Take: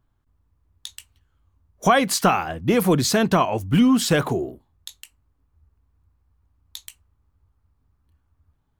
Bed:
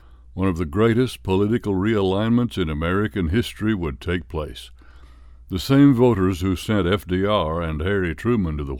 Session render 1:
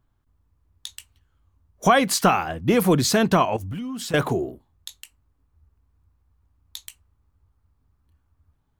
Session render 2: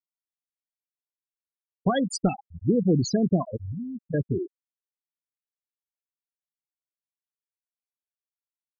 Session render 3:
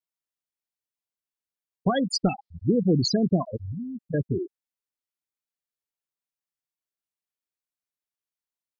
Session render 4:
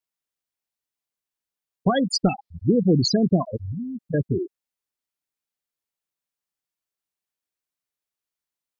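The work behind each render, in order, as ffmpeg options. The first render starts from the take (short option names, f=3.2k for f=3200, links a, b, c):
-filter_complex "[0:a]asettb=1/sr,asplit=3[a][b][c];[a]atrim=end=3.564[d];[b]atrim=start=3.56:end=4.14,asetpts=PTS-STARTPTS,afade=t=in:d=0.004:c=qsin,afade=t=out:st=0.576:d=0.004:c=qsin,acompressor=threshold=-28dB:ratio=16:attack=3.2:release=140:knee=1:detection=peak[e];[c]atrim=start=4.136[f];[d][e]acrossfade=d=0.004:c1=hsin:c2=qsin[g];[g][f]acrossfade=d=0.004:c1=qsin:c2=hsin"
-af "equalizer=f=1.1k:w=0.65:g=-12,afftfilt=real='re*gte(hypot(re,im),0.178)':imag='im*gte(hypot(re,im),0.178)':win_size=1024:overlap=0.75"
-filter_complex "[0:a]asettb=1/sr,asplit=3[a][b][c];[a]atrim=end=2.124[d];[b]atrim=start=2.12:end=3.86,asetpts=PTS-STARTPTS,afade=t=in:d=0.004:c=qsin,afade=t=out:st=1.736:d=0.004:c=qsin,lowpass=f=4.6k:t=q:w=3[e];[c]atrim=start=3.856[f];[d][e]acrossfade=d=0.004:c1=hsin:c2=qsin[g];[g][f]acrossfade=d=0.004:c1=qsin:c2=hsin"
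-af "volume=3dB"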